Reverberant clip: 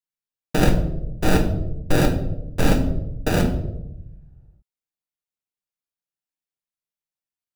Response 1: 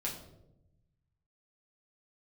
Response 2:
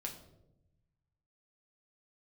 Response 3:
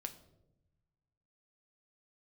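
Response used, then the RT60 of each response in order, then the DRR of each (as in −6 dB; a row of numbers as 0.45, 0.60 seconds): 2; 0.85, 0.90, 0.95 seconds; −3.0, 1.0, 7.0 decibels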